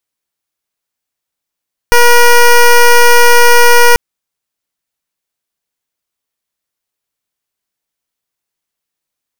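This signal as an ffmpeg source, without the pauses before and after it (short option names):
-f lavfi -i "aevalsrc='0.631*(2*lt(mod(479*t,1),0.13)-1)':d=2.04:s=44100"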